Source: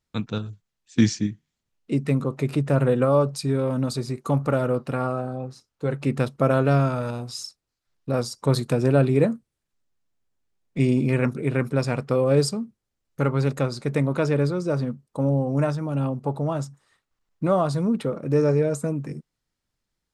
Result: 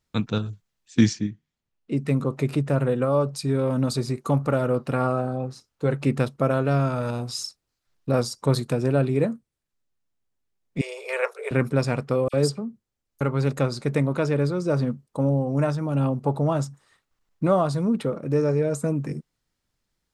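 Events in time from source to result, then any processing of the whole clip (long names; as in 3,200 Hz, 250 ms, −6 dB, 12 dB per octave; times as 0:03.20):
0:01.13–0:01.97: high-shelf EQ 6,600 Hz −11 dB
0:10.81–0:11.51: Butterworth high-pass 430 Hz 96 dB per octave
0:12.28–0:13.21: all-pass dispersion lows, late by 55 ms, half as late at 2,300 Hz
whole clip: speech leveller within 3 dB 0.5 s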